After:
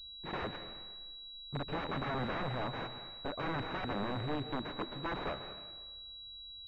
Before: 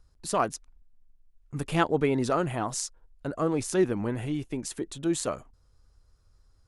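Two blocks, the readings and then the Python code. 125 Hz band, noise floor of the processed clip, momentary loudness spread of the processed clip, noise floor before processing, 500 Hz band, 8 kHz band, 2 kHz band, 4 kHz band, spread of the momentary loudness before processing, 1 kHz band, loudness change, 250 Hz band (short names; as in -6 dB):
-8.0 dB, -50 dBFS, 10 LU, -63 dBFS, -12.0 dB, under -35 dB, -4.0 dB, +1.0 dB, 12 LU, -7.0 dB, -10.5 dB, -11.5 dB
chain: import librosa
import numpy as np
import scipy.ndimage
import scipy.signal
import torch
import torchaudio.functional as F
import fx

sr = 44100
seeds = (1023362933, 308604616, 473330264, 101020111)

y = (np.mod(10.0 ** (25.0 / 20.0) * x + 1.0, 2.0) - 1.0) / 10.0 ** (25.0 / 20.0)
y = fx.rev_plate(y, sr, seeds[0], rt60_s=1.3, hf_ratio=0.85, predelay_ms=120, drr_db=9.5)
y = fx.pwm(y, sr, carrier_hz=3900.0)
y = y * 10.0 ** (-4.0 / 20.0)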